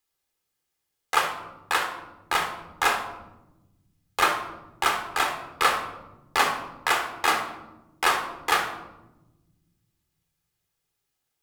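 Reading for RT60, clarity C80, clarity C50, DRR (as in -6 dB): 1.1 s, 10.5 dB, 7.0 dB, 4.5 dB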